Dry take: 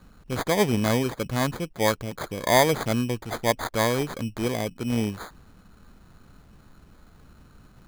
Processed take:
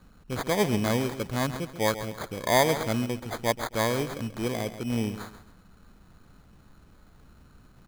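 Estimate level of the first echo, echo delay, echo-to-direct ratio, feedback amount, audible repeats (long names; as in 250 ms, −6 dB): −12.0 dB, 135 ms, −11.5 dB, 31%, 3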